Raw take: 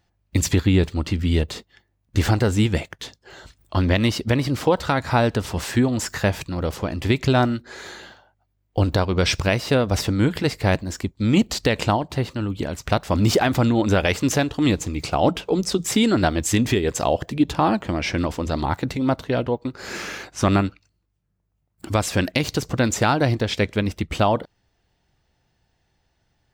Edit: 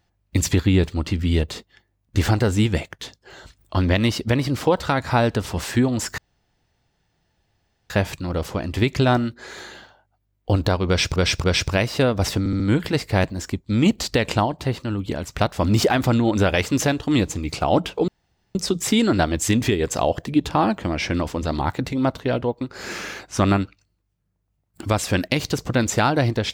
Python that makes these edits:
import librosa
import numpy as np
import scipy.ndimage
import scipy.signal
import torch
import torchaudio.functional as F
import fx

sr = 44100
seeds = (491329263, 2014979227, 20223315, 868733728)

y = fx.edit(x, sr, fx.insert_room_tone(at_s=6.18, length_s=1.72),
    fx.repeat(start_s=9.16, length_s=0.28, count=3),
    fx.stutter(start_s=10.11, slice_s=0.07, count=4),
    fx.insert_room_tone(at_s=15.59, length_s=0.47), tone=tone)